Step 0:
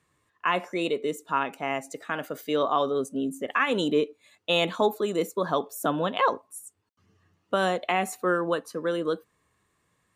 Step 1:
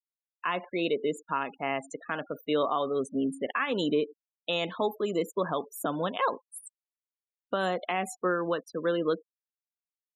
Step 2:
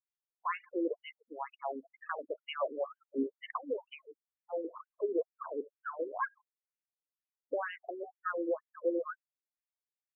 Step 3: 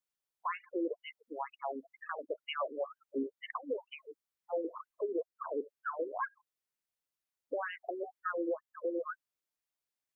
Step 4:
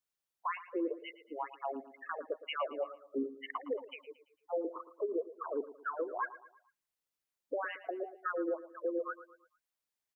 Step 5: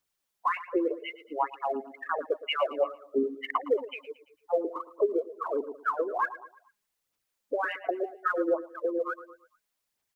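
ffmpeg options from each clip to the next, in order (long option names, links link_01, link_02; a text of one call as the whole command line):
ffmpeg -i in.wav -af "afftfilt=real='re*gte(hypot(re,im),0.0141)':imag='im*gte(hypot(re,im),0.0141)':win_size=1024:overlap=0.75,alimiter=limit=-17dB:level=0:latency=1:release=397" out.wav
ffmpeg -i in.wav -af "afftfilt=real='re*between(b*sr/1024,350*pow(2200/350,0.5+0.5*sin(2*PI*2.1*pts/sr))/1.41,350*pow(2200/350,0.5+0.5*sin(2*PI*2.1*pts/sr))*1.41)':imag='im*between(b*sr/1024,350*pow(2200/350,0.5+0.5*sin(2*PI*2.1*pts/sr))/1.41,350*pow(2200/350,0.5+0.5*sin(2*PI*2.1*pts/sr))*1.41)':win_size=1024:overlap=0.75,volume=-1.5dB" out.wav
ffmpeg -i in.wav -af "alimiter=level_in=5.5dB:limit=-24dB:level=0:latency=1:release=360,volume=-5.5dB,volume=3dB" out.wav
ffmpeg -i in.wav -af "aecho=1:1:113|226|339|452:0.168|0.0722|0.031|0.0133" out.wav
ffmpeg -i in.wav -af "aphaser=in_gain=1:out_gain=1:delay=4.9:decay=0.42:speed=1.4:type=sinusoidal,volume=7dB" out.wav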